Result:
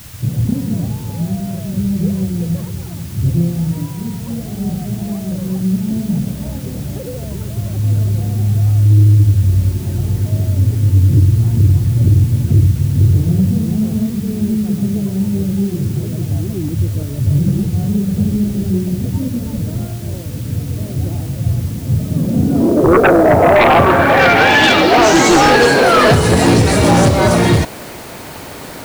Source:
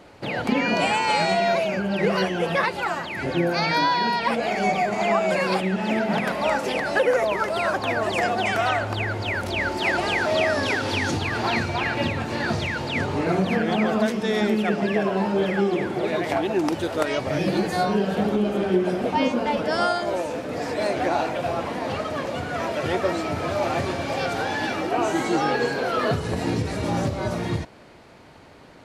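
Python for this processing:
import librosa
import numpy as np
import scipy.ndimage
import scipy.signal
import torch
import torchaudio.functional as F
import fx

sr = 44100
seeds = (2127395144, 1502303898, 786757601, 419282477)

y = fx.filter_sweep_lowpass(x, sr, from_hz=110.0, to_hz=9700.0, start_s=21.83, end_s=25.57, q=2.7)
y = fx.fold_sine(y, sr, drive_db=12, ceiling_db=-6.0)
y = fx.dmg_noise_colour(y, sr, seeds[0], colour='white', level_db=-39.0)
y = y * 10.0 ** (1.0 / 20.0)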